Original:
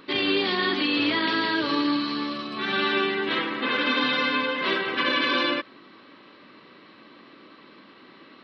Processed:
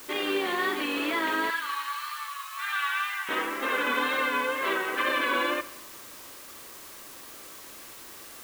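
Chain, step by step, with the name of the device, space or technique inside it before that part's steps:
wax cylinder (band-pass filter 400–2,100 Hz; tape wow and flutter; white noise bed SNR 16 dB)
0:01.50–0:03.29: Butterworth high-pass 1,000 Hz 36 dB per octave
four-comb reverb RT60 1.1 s, combs from 33 ms, DRR 16.5 dB

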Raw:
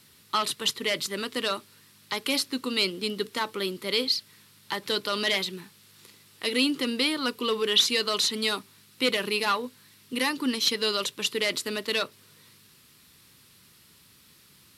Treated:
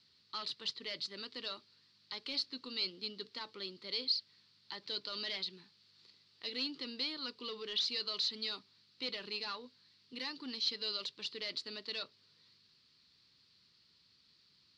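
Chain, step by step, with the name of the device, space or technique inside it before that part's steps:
overdriven synthesiser ladder filter (soft clipping −19 dBFS, distortion −15 dB; transistor ladder low-pass 4,900 Hz, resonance 70%)
level −5.5 dB

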